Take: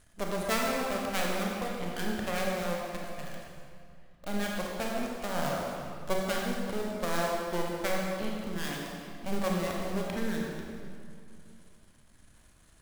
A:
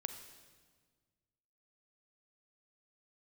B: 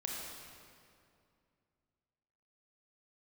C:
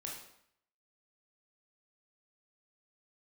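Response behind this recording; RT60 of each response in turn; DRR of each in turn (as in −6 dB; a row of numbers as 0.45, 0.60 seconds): B; 1.6, 2.4, 0.70 seconds; 7.5, −2.5, −2.0 decibels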